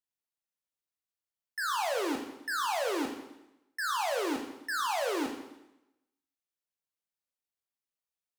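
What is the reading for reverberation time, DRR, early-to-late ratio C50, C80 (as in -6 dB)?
0.90 s, 2.0 dB, 6.5 dB, 9.0 dB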